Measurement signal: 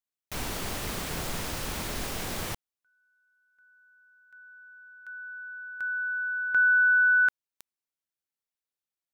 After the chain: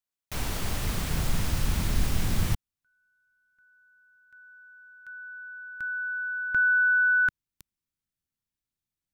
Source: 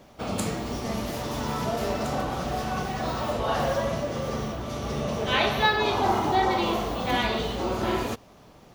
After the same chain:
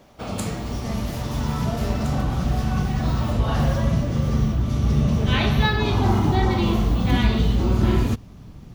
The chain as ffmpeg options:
-af "asubboost=boost=8:cutoff=200"

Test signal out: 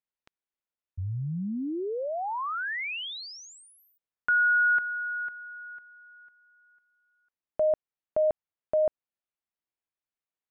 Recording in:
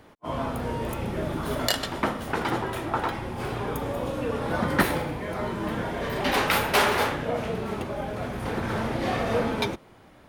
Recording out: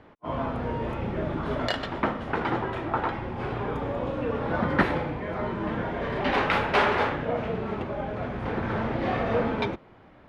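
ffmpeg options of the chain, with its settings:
-af "lowpass=2.7k"

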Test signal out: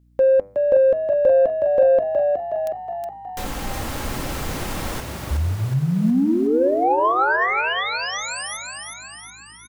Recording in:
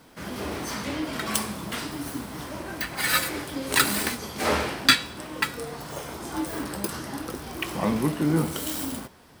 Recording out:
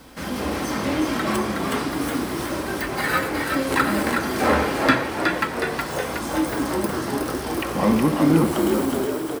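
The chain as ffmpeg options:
-filter_complex "[0:a]aecho=1:1:3.8:0.3,bandreject=f=98.67:t=h:w=4,bandreject=f=197.34:t=h:w=4,bandreject=f=296.01:t=h:w=4,bandreject=f=394.68:t=h:w=4,bandreject=f=493.35:t=h:w=4,bandreject=f=592.02:t=h:w=4,bandreject=f=690.69:t=h:w=4,bandreject=f=789.36:t=h:w=4,bandreject=f=888.03:t=h:w=4,bandreject=f=986.7:t=h:w=4,bandreject=f=1.08537k:t=h:w=4,bandreject=f=1.18404k:t=h:w=4,bandreject=f=1.28271k:t=h:w=4,bandreject=f=1.38138k:t=h:w=4,bandreject=f=1.48005k:t=h:w=4,bandreject=f=1.57872k:t=h:w=4,bandreject=f=1.67739k:t=h:w=4,bandreject=f=1.77606k:t=h:w=4,bandreject=f=1.87473k:t=h:w=4,bandreject=f=1.9734k:t=h:w=4,bandreject=f=2.07207k:t=h:w=4,bandreject=f=2.17074k:t=h:w=4,bandreject=f=2.26941k:t=h:w=4,bandreject=f=2.36808k:t=h:w=4,bandreject=f=2.46675k:t=h:w=4,acrossover=split=1900[a][b];[b]acompressor=threshold=-41dB:ratio=6[c];[a][c]amix=inputs=2:normalize=0,aeval=exprs='val(0)+0.000891*(sin(2*PI*60*n/s)+sin(2*PI*2*60*n/s)/2+sin(2*PI*3*60*n/s)/3+sin(2*PI*4*60*n/s)/4+sin(2*PI*5*60*n/s)/5)':c=same,asplit=2[d][e];[e]asoftclip=type=tanh:threshold=-22dB,volume=-6dB[f];[d][f]amix=inputs=2:normalize=0,asplit=9[g][h][i][j][k][l][m][n][o];[h]adelay=367,afreqshift=52,volume=-4.5dB[p];[i]adelay=734,afreqshift=104,volume=-9.4dB[q];[j]adelay=1101,afreqshift=156,volume=-14.3dB[r];[k]adelay=1468,afreqshift=208,volume=-19.1dB[s];[l]adelay=1835,afreqshift=260,volume=-24dB[t];[m]adelay=2202,afreqshift=312,volume=-28.9dB[u];[n]adelay=2569,afreqshift=364,volume=-33.8dB[v];[o]adelay=2936,afreqshift=416,volume=-38.7dB[w];[g][p][q][r][s][t][u][v][w]amix=inputs=9:normalize=0,volume=3dB"

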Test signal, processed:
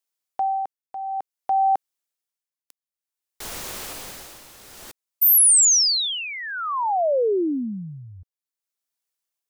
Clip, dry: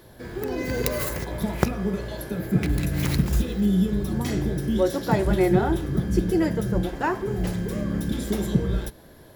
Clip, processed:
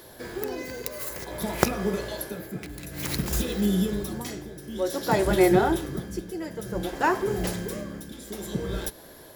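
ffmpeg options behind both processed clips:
-af "bass=f=250:g=-9,treble=f=4k:g=5,tremolo=f=0.55:d=0.79,volume=3.5dB"

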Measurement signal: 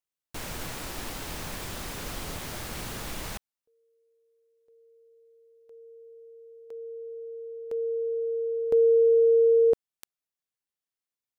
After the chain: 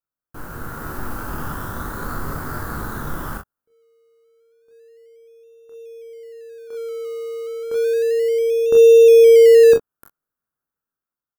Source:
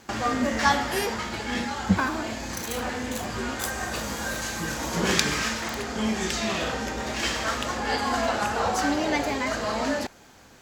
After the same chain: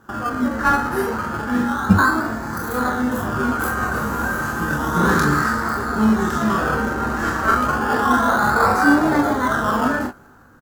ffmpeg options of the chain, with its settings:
-filter_complex "[0:a]firequalizer=gain_entry='entry(280,0);entry(620,-6);entry(1400,8);entry(2300,-22);entry(13000,-3)':delay=0.05:min_phase=1,dynaudnorm=f=160:g=9:m=7dB,asplit=2[a][b];[b]adelay=20,volume=-10.5dB[c];[a][c]amix=inputs=2:normalize=0,aecho=1:1:28|41:0.596|0.501,asplit=2[d][e];[e]acrusher=samples=20:mix=1:aa=0.000001:lfo=1:lforange=12:lforate=0.31,volume=-11.5dB[f];[d][f]amix=inputs=2:normalize=0,volume=-1dB"

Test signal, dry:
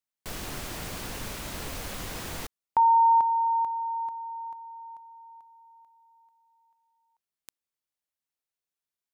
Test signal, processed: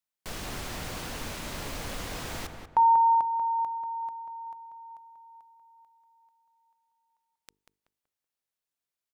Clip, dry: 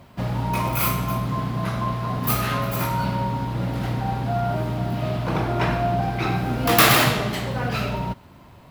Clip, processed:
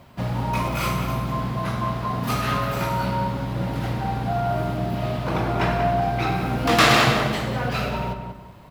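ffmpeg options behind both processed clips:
-filter_complex "[0:a]bandreject=f=50:t=h:w=6,bandreject=f=100:t=h:w=6,bandreject=f=150:t=h:w=6,bandreject=f=200:t=h:w=6,bandreject=f=250:t=h:w=6,bandreject=f=300:t=h:w=6,bandreject=f=350:t=h:w=6,bandreject=f=400:t=h:w=6,bandreject=f=450:t=h:w=6,asplit=2[a][b];[b]adelay=189,lowpass=f=2.2k:p=1,volume=-6dB,asplit=2[c][d];[d]adelay=189,lowpass=f=2.2k:p=1,volume=0.33,asplit=2[e][f];[f]adelay=189,lowpass=f=2.2k:p=1,volume=0.33,asplit=2[g][h];[h]adelay=189,lowpass=f=2.2k:p=1,volume=0.33[i];[a][c][e][g][i]amix=inputs=5:normalize=0,acrossover=split=8100[j][k];[k]acompressor=threshold=-45dB:ratio=4:attack=1:release=60[l];[j][l]amix=inputs=2:normalize=0"

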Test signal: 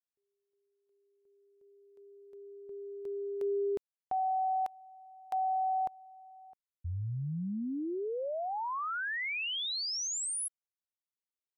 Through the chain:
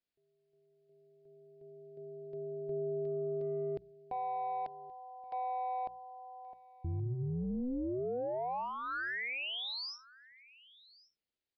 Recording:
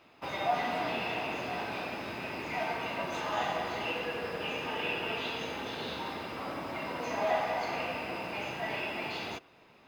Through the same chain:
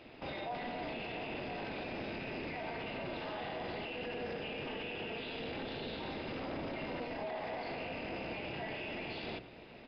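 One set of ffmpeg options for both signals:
-filter_complex "[0:a]asplit=2[a][b];[b]asoftclip=type=tanh:threshold=-33dB,volume=-5.5dB[c];[a][c]amix=inputs=2:normalize=0,acompressor=threshold=-36dB:ratio=1.5:release=53,equalizer=f=1.1k:w=1.5:g=-12,bandreject=f=60:t=h:w=6,bandreject=f=120:t=h:w=6,bandreject=f=180:t=h:w=6,alimiter=level_in=14.5dB:limit=-24dB:level=0:latency=1:release=12,volume=-14.5dB,highshelf=f=2.5k:g=-6.5,tremolo=f=250:d=0.667,aecho=1:1:1126:0.0794,aresample=11025,aresample=44100,volume=9dB"

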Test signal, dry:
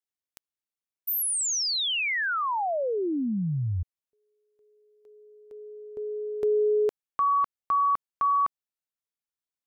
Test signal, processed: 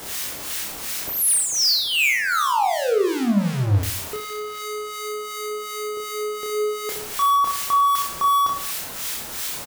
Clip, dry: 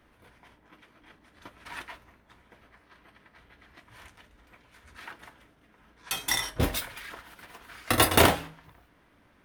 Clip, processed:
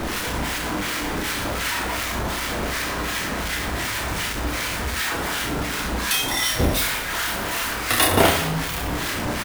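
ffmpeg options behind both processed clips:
-filter_complex "[0:a]aeval=exprs='val(0)+0.5*0.0841*sgn(val(0))':c=same,acrossover=split=1200[a][b];[a]aeval=exprs='val(0)*(1-0.7/2+0.7/2*cos(2*PI*2.7*n/s))':c=same[c];[b]aeval=exprs='val(0)*(1-0.7/2-0.7/2*cos(2*PI*2.7*n/s))':c=same[d];[c][d]amix=inputs=2:normalize=0,aecho=1:1:30|67.5|114.4|173|246.2:0.631|0.398|0.251|0.158|0.1,volume=2.5dB"

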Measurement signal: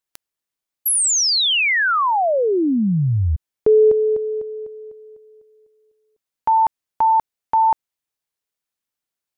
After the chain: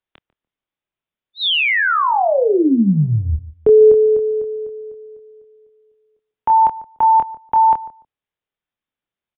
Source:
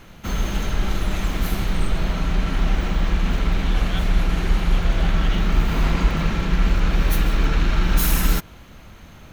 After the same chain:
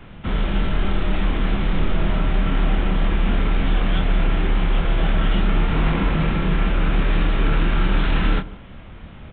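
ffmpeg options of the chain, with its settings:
-filter_complex "[0:a]lowshelf=f=460:g=4,acrossover=split=180[a][b];[a]acompressor=threshold=-19dB:ratio=6:attack=4.2:release=50:knee=2.83:detection=peak[c];[c][b]amix=inputs=2:normalize=0,asplit=2[d][e];[e]adelay=26,volume=-6dB[f];[d][f]amix=inputs=2:normalize=0,asplit=2[g][h];[h]adelay=146,lowpass=f=880:p=1,volume=-16dB,asplit=2[i][j];[j]adelay=146,lowpass=f=880:p=1,volume=0.2[k];[i][k]amix=inputs=2:normalize=0[l];[g][l]amix=inputs=2:normalize=0,aresample=8000,aresample=44100"

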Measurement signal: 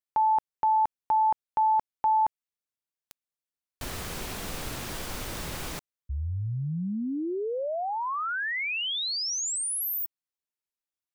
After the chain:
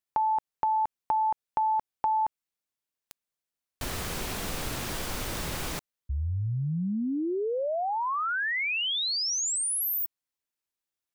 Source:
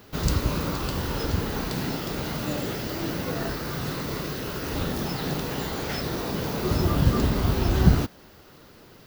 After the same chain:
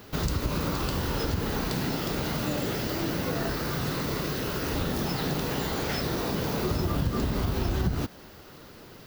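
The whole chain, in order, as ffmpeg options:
-af "acompressor=threshold=-27dB:ratio=5:attack=12:release=203:knee=6:detection=peak,volume=2.5dB"

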